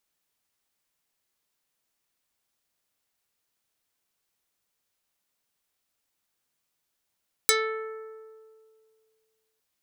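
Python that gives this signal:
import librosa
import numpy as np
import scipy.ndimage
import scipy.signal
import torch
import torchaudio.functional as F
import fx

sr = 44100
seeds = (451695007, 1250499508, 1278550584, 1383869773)

y = fx.pluck(sr, length_s=2.11, note=69, decay_s=2.17, pick=0.47, brightness='dark')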